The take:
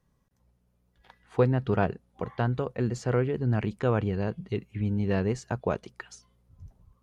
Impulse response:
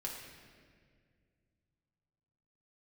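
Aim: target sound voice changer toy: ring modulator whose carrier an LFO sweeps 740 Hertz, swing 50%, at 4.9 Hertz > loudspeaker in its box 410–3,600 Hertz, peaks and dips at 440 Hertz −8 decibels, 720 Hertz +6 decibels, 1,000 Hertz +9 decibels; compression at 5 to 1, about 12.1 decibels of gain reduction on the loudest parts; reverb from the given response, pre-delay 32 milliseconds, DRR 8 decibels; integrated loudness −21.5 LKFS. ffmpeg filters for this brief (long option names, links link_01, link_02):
-filter_complex "[0:a]acompressor=threshold=-31dB:ratio=5,asplit=2[link_01][link_02];[1:a]atrim=start_sample=2205,adelay=32[link_03];[link_02][link_03]afir=irnorm=-1:irlink=0,volume=-8dB[link_04];[link_01][link_04]amix=inputs=2:normalize=0,aeval=exprs='val(0)*sin(2*PI*740*n/s+740*0.5/4.9*sin(2*PI*4.9*n/s))':channel_layout=same,highpass=410,equalizer=frequency=440:width_type=q:width=4:gain=-8,equalizer=frequency=720:width_type=q:width=4:gain=6,equalizer=frequency=1000:width_type=q:width=4:gain=9,lowpass=frequency=3600:width=0.5412,lowpass=frequency=3600:width=1.3066,volume=12.5dB"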